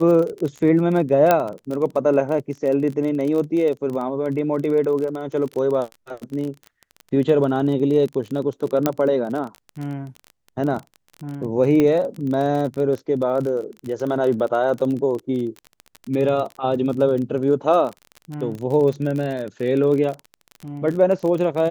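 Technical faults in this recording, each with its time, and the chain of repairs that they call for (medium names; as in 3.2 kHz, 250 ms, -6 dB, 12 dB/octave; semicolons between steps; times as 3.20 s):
crackle 30 per s -26 dBFS
1.31 s: pop -3 dBFS
8.86 s: pop -4 dBFS
11.80 s: pop -8 dBFS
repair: de-click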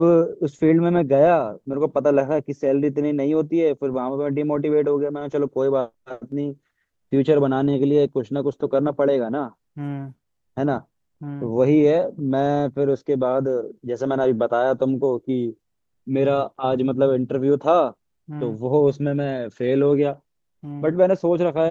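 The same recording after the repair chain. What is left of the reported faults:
nothing left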